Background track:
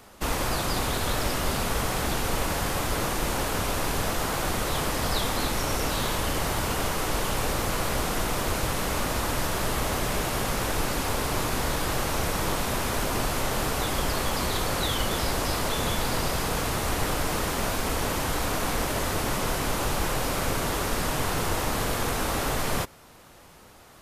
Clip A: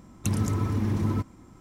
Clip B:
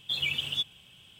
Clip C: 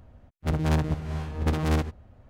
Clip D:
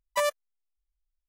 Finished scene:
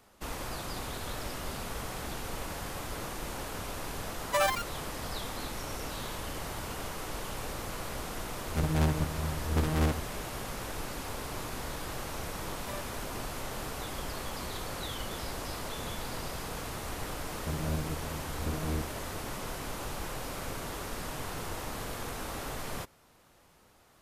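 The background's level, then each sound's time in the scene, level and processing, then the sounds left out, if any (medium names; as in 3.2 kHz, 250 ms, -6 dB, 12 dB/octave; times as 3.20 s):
background track -11 dB
4.17 s: add D -2 dB + ever faster or slower copies 108 ms, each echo +5 st, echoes 3
8.10 s: add C -3.5 dB
12.51 s: add D -17.5 dB
17.00 s: add C -9 dB + elliptic low-pass 670 Hz
not used: A, B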